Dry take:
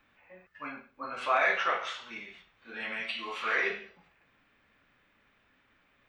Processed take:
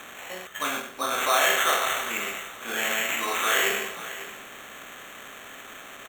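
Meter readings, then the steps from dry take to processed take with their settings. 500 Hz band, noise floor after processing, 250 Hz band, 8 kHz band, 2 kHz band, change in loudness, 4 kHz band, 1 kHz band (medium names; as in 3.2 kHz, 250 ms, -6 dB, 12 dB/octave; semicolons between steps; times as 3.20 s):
+6.5 dB, -44 dBFS, +8.0 dB, +27.0 dB, +6.0 dB, +7.0 dB, +13.0 dB, +6.5 dB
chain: spectral levelling over time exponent 0.6; in parallel at 0 dB: peak limiter -25 dBFS, peak gain reduction 12 dB; on the sum: sample-and-hold 9×; delay 542 ms -15 dB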